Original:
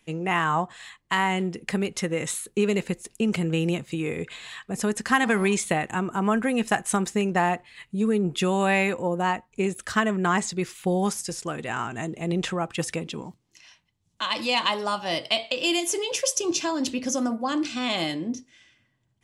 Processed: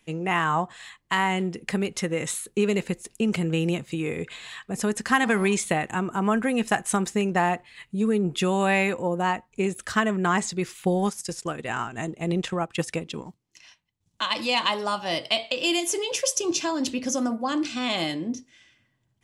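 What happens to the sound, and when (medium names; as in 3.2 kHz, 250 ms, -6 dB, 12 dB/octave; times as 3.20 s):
10.76–14.35 s: transient shaper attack +2 dB, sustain -8 dB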